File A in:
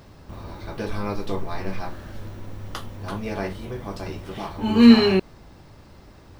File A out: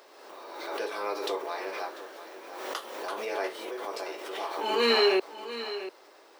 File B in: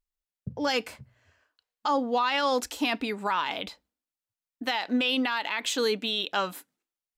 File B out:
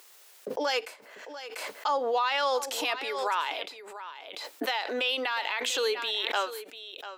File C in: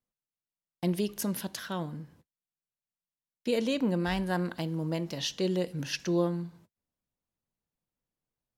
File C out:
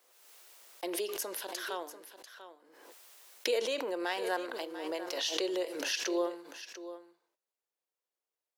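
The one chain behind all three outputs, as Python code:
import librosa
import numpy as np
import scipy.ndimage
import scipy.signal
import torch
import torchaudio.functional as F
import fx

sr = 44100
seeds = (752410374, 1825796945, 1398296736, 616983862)

y = scipy.signal.sosfilt(scipy.signal.butter(6, 370.0, 'highpass', fs=sr, output='sos'), x)
y = y + 10.0 ** (-13.0 / 20.0) * np.pad(y, (int(693 * sr / 1000.0), 0))[:len(y)]
y = fx.pre_swell(y, sr, db_per_s=41.0)
y = y * librosa.db_to_amplitude(-1.5)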